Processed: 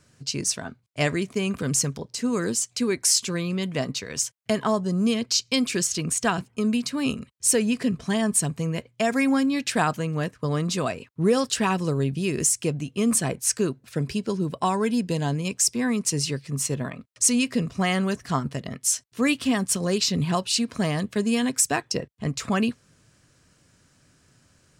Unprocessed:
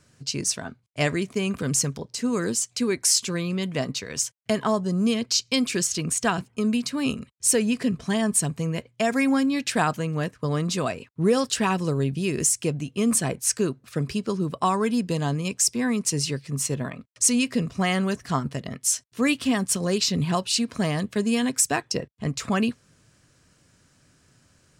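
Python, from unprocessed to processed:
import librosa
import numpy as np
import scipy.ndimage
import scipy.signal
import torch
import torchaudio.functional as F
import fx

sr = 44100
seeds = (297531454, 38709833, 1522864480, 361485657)

y = fx.notch(x, sr, hz=1200.0, q=6.0, at=(13.7, 15.47))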